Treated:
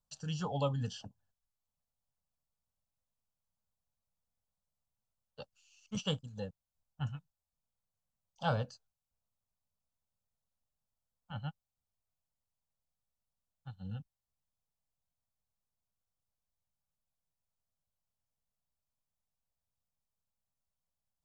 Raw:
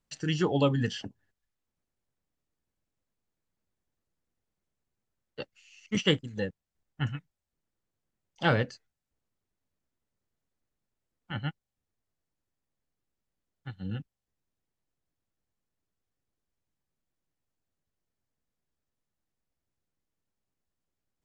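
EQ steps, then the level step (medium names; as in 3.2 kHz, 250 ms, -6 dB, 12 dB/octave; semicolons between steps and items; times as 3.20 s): static phaser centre 830 Hz, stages 4; -4.0 dB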